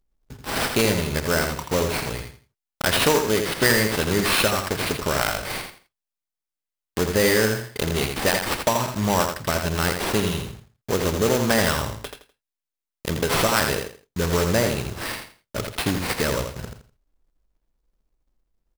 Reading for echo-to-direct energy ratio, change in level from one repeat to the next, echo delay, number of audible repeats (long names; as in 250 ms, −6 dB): −5.5 dB, −12.0 dB, 83 ms, 3